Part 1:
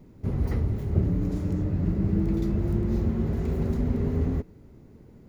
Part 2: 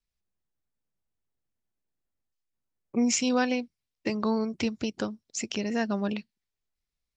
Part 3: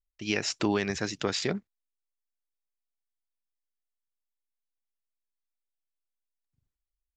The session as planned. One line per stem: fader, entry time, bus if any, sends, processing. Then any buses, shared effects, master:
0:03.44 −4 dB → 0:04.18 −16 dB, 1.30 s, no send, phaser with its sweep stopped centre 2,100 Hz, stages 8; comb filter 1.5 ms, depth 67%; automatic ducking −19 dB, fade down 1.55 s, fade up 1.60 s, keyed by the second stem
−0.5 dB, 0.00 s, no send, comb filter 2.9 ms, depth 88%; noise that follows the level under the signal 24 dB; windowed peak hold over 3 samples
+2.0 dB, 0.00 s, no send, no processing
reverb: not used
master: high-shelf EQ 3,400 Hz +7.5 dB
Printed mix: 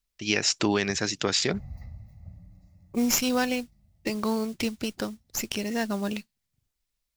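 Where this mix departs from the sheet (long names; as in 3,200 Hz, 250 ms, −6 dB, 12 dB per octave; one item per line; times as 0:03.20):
stem 1 −4.0 dB → −13.0 dB
stem 2: missing comb filter 2.9 ms, depth 88%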